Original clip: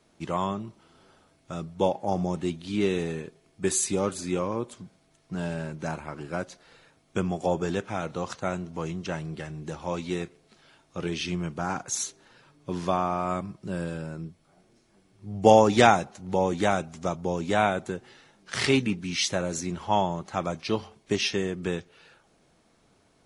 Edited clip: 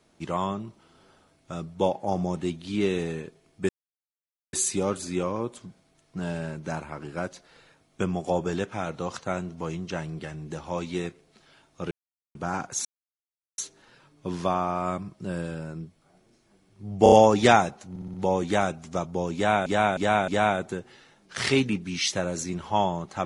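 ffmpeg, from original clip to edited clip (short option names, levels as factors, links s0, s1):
-filter_complex "[0:a]asplit=15[s0][s1][s2][s3][s4][s5][s6][s7][s8][s9][s10][s11][s12][s13][s14];[s0]atrim=end=3.69,asetpts=PTS-STARTPTS,afade=t=out:st=3.686:d=0.004:c=hsin,apad=pad_dur=0.84[s15];[s1]atrim=start=3.69:end=11.07,asetpts=PTS-STARTPTS,afade=t=in:d=0.004:c=hsin,afade=t=out:st=7.376:d=0.004:c=hsin[s16];[s2]atrim=start=11.07:end=11.51,asetpts=PTS-STARTPTS,volume=0[s17];[s3]atrim=start=11.51:end=12.01,asetpts=PTS-STARTPTS,afade=t=in:d=0.004:c=hsin,afade=t=out:st=0.496:d=0.004:c=hsin,apad=pad_dur=0.73[s18];[s4]atrim=start=12.01:end=15.492,asetpts=PTS-STARTPTS,afade=t=in:d=0.004:c=hsin[s19];[s5]atrim=start=15.458:end=15.492[s20];[s6]atrim=start=15.458:end=15.492[s21];[s7]atrim=start=15.458:end=16.302[s22];[s8]atrim=start=16.238:end=16.302[s23];[s9]atrim=start=16.238:end=16.302[s24];[s10]atrim=start=16.238:end=16.302[s25];[s11]atrim=start=16.238:end=17.762[s26];[s12]atrim=start=17.448:end=17.762[s27];[s13]atrim=start=17.448:end=17.762[s28];[s14]atrim=start=17.448[s29];[s15][s16][s17][s18][s19]concat=n=5:v=0:a=1[s30];[s30][s20]acrossfade=d=0.004:c1=hsin:c2=hsin[s31];[s31][s21]acrossfade=d=0.004:c1=hsin:c2=hsin[s32];[s32][s22]acrossfade=d=0.004:c1=hsin:c2=hsin[s33];[s33][s23]acrossfade=d=0.004:c1=hsin:c2=hsin[s34];[s34][s24]acrossfade=d=0.004:c1=hsin:c2=hsin[s35];[s35][s25]acrossfade=d=0.004:c1=hsin:c2=hsin[s36];[s36][s26]acrossfade=d=0.004:c1=hsin:c2=hsin[s37];[s37][s27]acrossfade=d=0.004:c1=hsin:c2=hsin[s38];[s38][s28]acrossfade=d=0.004:c1=hsin:c2=hsin[s39];[s39][s29]acrossfade=d=0.004:c1=hsin:c2=hsin"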